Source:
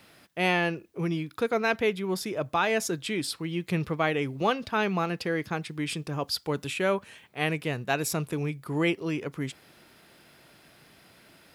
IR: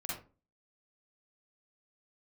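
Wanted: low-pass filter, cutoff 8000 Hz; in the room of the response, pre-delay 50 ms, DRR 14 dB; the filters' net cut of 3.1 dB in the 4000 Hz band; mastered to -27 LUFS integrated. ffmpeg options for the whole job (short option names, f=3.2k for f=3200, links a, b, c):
-filter_complex "[0:a]lowpass=8k,equalizer=f=4k:t=o:g=-4,asplit=2[a][b];[1:a]atrim=start_sample=2205,adelay=50[c];[b][c]afir=irnorm=-1:irlink=0,volume=-15.5dB[d];[a][d]amix=inputs=2:normalize=0,volume=2dB"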